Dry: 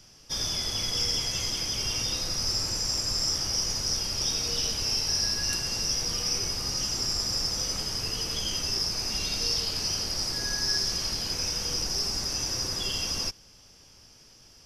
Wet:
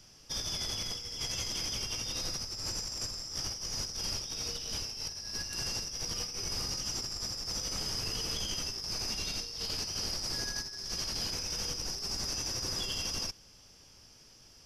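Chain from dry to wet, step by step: negative-ratio compressor -31 dBFS, ratio -0.5; gain -5 dB

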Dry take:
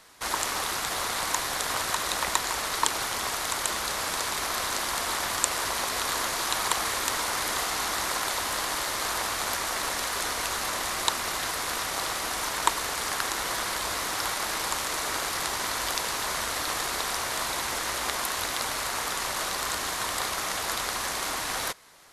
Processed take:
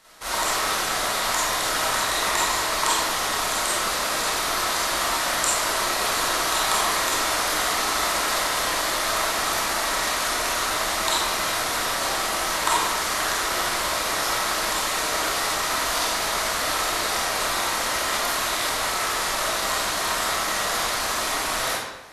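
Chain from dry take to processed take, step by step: digital reverb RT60 1 s, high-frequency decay 0.8×, pre-delay 5 ms, DRR -9 dB; gain -3.5 dB

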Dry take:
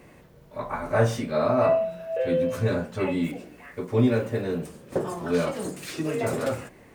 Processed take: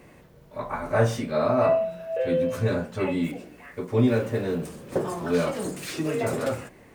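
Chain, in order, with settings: 4.08–6.23 G.711 law mismatch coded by mu

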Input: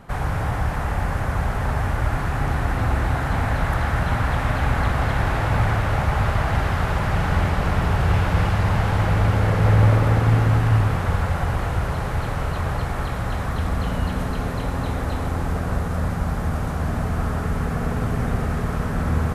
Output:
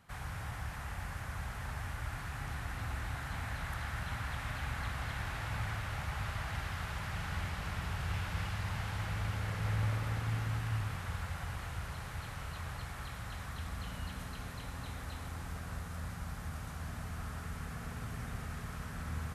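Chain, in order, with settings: HPF 42 Hz; passive tone stack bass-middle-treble 5-5-5; gain -3 dB

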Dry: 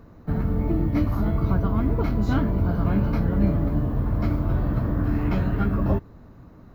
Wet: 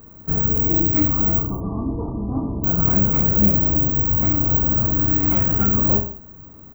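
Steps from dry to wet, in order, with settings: careless resampling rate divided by 2×, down filtered, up zero stuff; 1.4–2.64 rippled Chebyshev low-pass 1200 Hz, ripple 6 dB; reverse bouncing-ball echo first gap 30 ms, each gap 1.15×, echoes 5; gain -1 dB

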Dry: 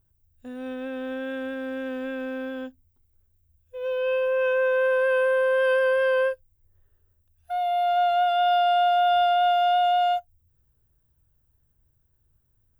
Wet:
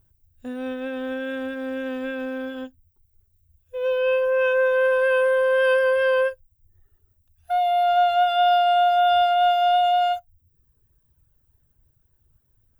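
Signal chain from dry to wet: reverb removal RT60 0.96 s; gain +6 dB

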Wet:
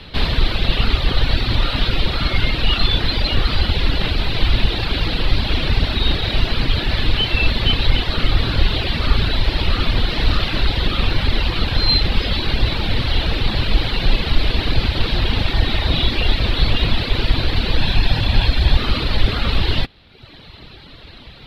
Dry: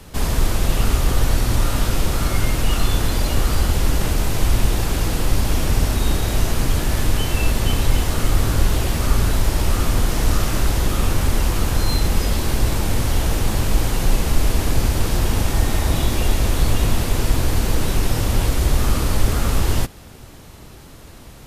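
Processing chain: 17.77–18.77 comb 1.2 ms, depth 37%; reverb removal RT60 1 s; EQ curve 1100 Hz 0 dB, 4100 Hz +12 dB, 6500 Hz -21 dB; gain +2.5 dB

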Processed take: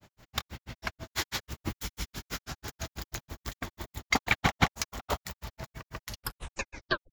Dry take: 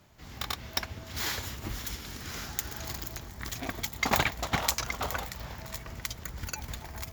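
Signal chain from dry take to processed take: tape stop at the end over 1.11 s; grains 95 ms, grains 6.1/s, pitch spread up and down by 0 st; gain +5.5 dB

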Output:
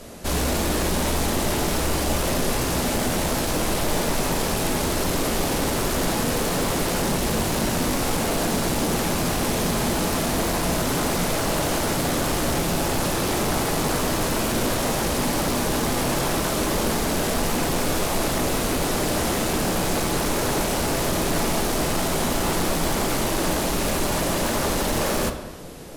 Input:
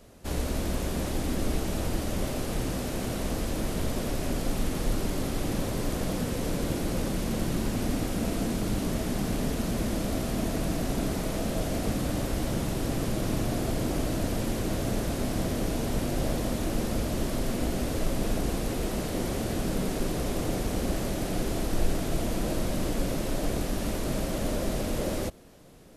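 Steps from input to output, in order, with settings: tone controls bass -4 dB, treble +2 dB; sine folder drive 15 dB, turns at -15.5 dBFS; reverb RT60 1.3 s, pre-delay 3 ms, DRR 5.5 dB; gain -5.5 dB

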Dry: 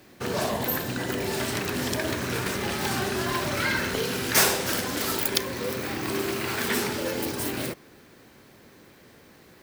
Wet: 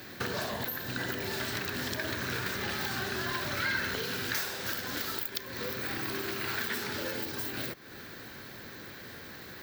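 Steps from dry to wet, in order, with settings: high shelf 8700 Hz +12 dB; compressor 4:1, threshold -39 dBFS, peak gain reduction 23.5 dB; fifteen-band EQ 100 Hz +4 dB, 1600 Hz +8 dB, 4000 Hz +6 dB, 10000 Hz -11 dB; gain +3.5 dB

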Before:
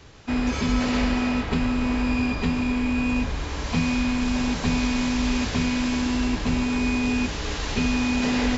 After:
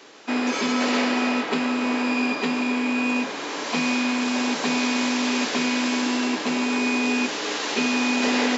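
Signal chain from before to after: HPF 270 Hz 24 dB/oct; gain +4.5 dB

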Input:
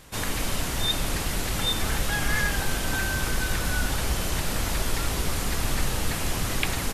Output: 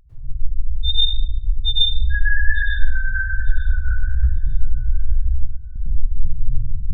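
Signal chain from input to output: loudest bins only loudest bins 2; 5.32–5.76 weighting filter D; on a send: thinning echo 0.898 s, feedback 18%, level -20.5 dB; on the sum: plate-style reverb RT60 0.93 s, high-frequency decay 0.6×, pre-delay 90 ms, DRR -8 dB; 2.59–4.73 Doppler distortion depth 0.27 ms; gain +6.5 dB

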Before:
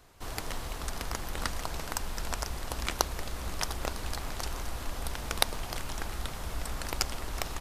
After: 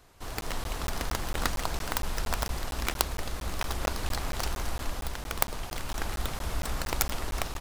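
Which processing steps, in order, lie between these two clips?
tracing distortion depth 0.47 ms; AGC gain up to 4 dB; crackling interface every 0.23 s, samples 512, zero, from 0.41

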